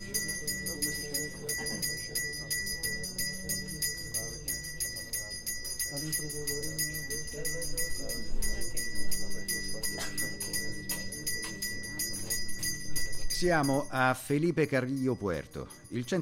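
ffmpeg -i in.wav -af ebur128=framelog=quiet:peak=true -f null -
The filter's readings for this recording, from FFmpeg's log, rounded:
Integrated loudness:
  I:         -32.7 LUFS
  Threshold: -42.8 LUFS
Loudness range:
  LRA:         4.0 LU
  Threshold: -52.9 LUFS
  LRA low:   -34.3 LUFS
  LRA high:  -30.3 LUFS
True peak:
  Peak:      -13.6 dBFS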